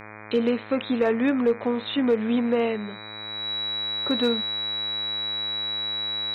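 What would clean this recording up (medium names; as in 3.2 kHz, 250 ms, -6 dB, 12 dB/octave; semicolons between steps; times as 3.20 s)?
clip repair -14 dBFS; de-hum 106.7 Hz, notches 23; band-stop 3.9 kHz, Q 30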